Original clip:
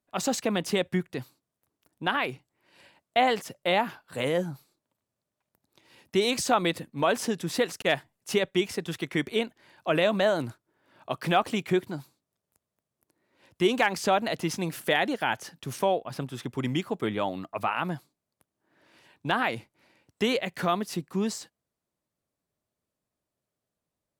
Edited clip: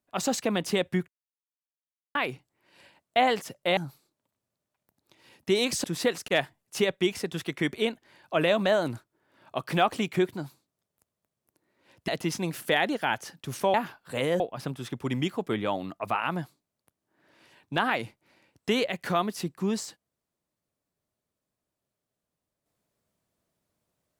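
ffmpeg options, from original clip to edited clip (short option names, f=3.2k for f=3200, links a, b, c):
-filter_complex "[0:a]asplit=8[a][b][c][d][e][f][g][h];[a]atrim=end=1.08,asetpts=PTS-STARTPTS,afade=t=out:st=1.076:d=0.004:c=hsin[i];[b]atrim=start=1.08:end=2.15,asetpts=PTS-STARTPTS,volume=0[j];[c]atrim=start=2.15:end=3.772,asetpts=PTS-STARTPTS,afade=t=in:d=0.004:c=hsin[k];[d]atrim=start=4.428:end=6.502[l];[e]atrim=start=7.378:end=13.622[m];[f]atrim=start=14.268:end=15.932[n];[g]atrim=start=3.768:end=4.432[o];[h]atrim=start=15.928[p];[i][j][k]concat=n=3:v=0:a=1[q];[q][l]acrossfade=d=0.004:c1=hsin:c2=hsin[r];[r][m]acrossfade=d=0.004:c1=hsin:c2=hsin[s];[s][n]acrossfade=d=0.004:c1=hsin:c2=hsin[t];[t][o]acrossfade=d=0.004:c1=hsin:c2=hsin[u];[u][p]acrossfade=d=0.004:c1=hsin:c2=hsin"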